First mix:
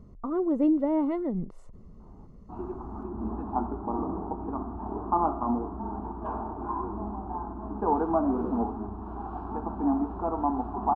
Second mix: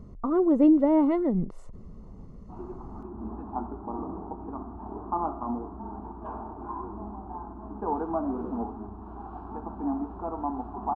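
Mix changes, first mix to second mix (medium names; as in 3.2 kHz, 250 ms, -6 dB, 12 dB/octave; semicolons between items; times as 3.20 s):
speech +4.5 dB; background -4.0 dB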